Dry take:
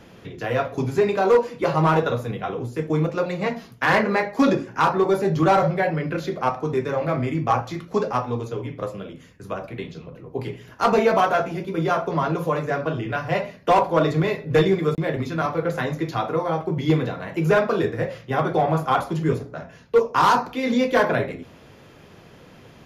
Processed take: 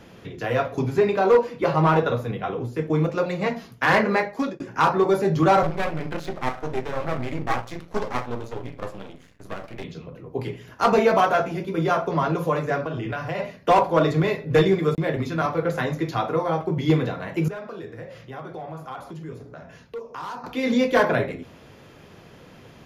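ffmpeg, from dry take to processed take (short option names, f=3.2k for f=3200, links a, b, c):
-filter_complex "[0:a]asettb=1/sr,asplit=3[a][b][c];[a]atrim=end=0.794[d];[b]atrim=start=0.79:end=3,asetpts=PTS-STARTPTS,afade=t=in:d=0.004:c=qsin,afade=t=out:st=2.206:d=0.004:c=qsin,equalizer=f=8.4k:t=o:w=1.2:g=-6.5[e];[c]atrim=start=2.996[f];[d][e]acrossfade=d=0.004:c1=hsin:c2=qsin[g];[g][f]acrossfade=d=0.004:c1=qsin:c2=hsin,asettb=1/sr,asplit=3[h][i][j];[h]atrim=end=5.634[k];[i]atrim=start=5.63:end=9.84,asetpts=PTS-STARTPTS,afade=t=in:d=0.004:c=qsin,afade=t=out:st=4.206:d=0.004:c=qsin,aeval=exprs='max(val(0),0)':c=same[l];[j]atrim=start=9.836[m];[k][l]acrossfade=d=0.004:c1=hsin:c2=qsin[n];[n][m]acrossfade=d=0.004:c1=qsin:c2=hsin,asplit=3[o][p][q];[o]afade=t=out:st=12.84:d=0.02[r];[p]acompressor=threshold=-24dB:ratio=6:attack=3.2:release=140:knee=1:detection=peak,afade=t=in:st=12.84:d=0.02,afade=t=out:st=13.38:d=0.02[s];[q]afade=t=in:st=13.38:d=0.02[t];[r][s][t]amix=inputs=3:normalize=0,asettb=1/sr,asplit=3[u][v][w];[u]atrim=end=17.484[x];[v]atrim=start=17.48:end=20.44,asetpts=PTS-STARTPTS,afade=t=in:d=0.004:c=qsin,afade=t=out:st=2.956:d=0.004:c=qsin,acompressor=threshold=-40dB:ratio=2.5:attack=3.2:release=140:knee=1:detection=peak[y];[w]atrim=start=20.436[z];[x][y]acrossfade=d=0.004:c1=hsin:c2=qsin[aa];[aa][z]acrossfade=d=0.004:c1=qsin:c2=hsin,asplit=2[ab][ac];[ab]atrim=end=4.6,asetpts=PTS-STARTPTS,afade=t=out:st=4.18:d=0.42[ad];[ac]atrim=start=4.6,asetpts=PTS-STARTPTS,afade=t=in:d=0.004:c=hsin[ae];[ad][ae]concat=n=2:v=0:a=1"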